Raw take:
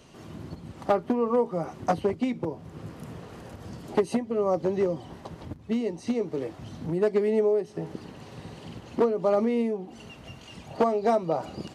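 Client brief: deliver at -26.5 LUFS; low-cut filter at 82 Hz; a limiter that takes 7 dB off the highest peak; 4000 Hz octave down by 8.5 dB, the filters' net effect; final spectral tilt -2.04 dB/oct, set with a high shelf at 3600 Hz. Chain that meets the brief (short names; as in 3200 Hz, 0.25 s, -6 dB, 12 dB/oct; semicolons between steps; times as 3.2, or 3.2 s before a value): HPF 82 Hz; high shelf 3600 Hz -6.5 dB; bell 4000 Hz -8 dB; gain +3.5 dB; limiter -16 dBFS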